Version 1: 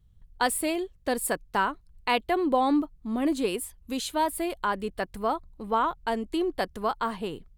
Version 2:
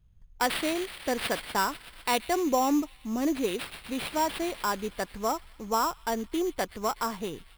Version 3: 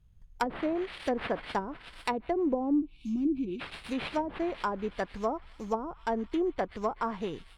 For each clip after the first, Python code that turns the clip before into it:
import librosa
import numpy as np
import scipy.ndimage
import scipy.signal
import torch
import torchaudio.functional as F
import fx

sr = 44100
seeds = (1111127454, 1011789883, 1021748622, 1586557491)

y1 = fx.echo_wet_highpass(x, sr, ms=124, feedback_pct=75, hz=4900.0, wet_db=-6.0)
y1 = fx.sample_hold(y1, sr, seeds[0], rate_hz=6500.0, jitter_pct=0)
y1 = y1 * 10.0 ** (-1.5 / 20.0)
y2 = fx.env_lowpass_down(y1, sr, base_hz=410.0, full_db=-22.0)
y2 = fx.spec_box(y2, sr, start_s=2.81, length_s=0.8, low_hz=370.0, high_hz=2200.0, gain_db=-23)